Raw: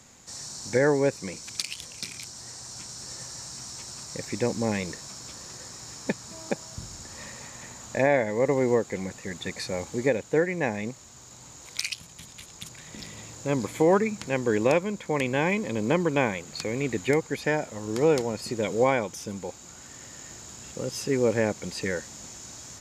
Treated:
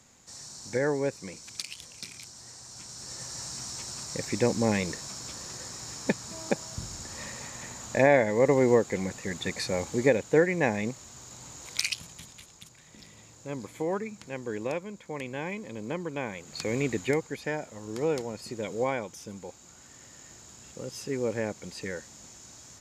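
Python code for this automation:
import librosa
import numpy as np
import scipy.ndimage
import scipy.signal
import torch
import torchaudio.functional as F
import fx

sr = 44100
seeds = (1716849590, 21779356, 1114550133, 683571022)

y = fx.gain(x, sr, db=fx.line((2.69, -5.5), (3.43, 1.5), (12.06, 1.5), (12.7, -10.0), (16.22, -10.0), (16.74, 1.0), (17.4, -6.5)))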